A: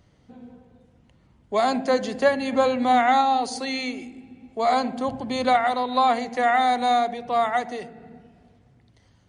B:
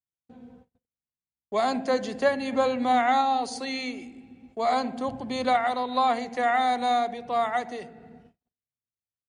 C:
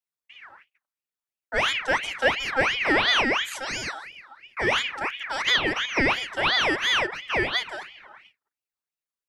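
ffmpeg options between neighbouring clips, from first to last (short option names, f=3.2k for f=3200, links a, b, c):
-af "agate=range=-44dB:threshold=-49dB:ratio=16:detection=peak,volume=-3.5dB"
-af "aeval=exprs='val(0)*sin(2*PI*1900*n/s+1900*0.45/2.9*sin(2*PI*2.9*n/s))':c=same,volume=3.5dB"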